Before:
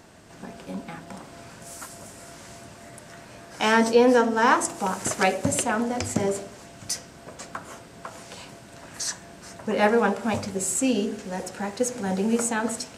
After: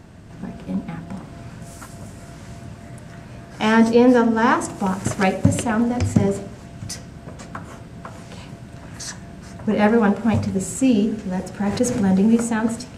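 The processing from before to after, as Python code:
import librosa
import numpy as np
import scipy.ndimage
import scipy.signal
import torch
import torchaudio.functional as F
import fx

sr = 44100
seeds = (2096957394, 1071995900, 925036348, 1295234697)

y = fx.bass_treble(x, sr, bass_db=13, treble_db=-5)
y = fx.env_flatten(y, sr, amount_pct=50, at=(11.66, 12.26))
y = y * librosa.db_to_amplitude(1.0)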